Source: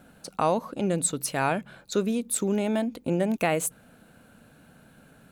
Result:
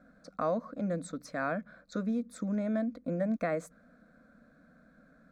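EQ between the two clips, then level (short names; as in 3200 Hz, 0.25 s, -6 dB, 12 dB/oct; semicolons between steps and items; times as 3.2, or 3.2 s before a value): air absorption 200 m; high shelf 5800 Hz +4.5 dB; fixed phaser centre 580 Hz, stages 8; -3.5 dB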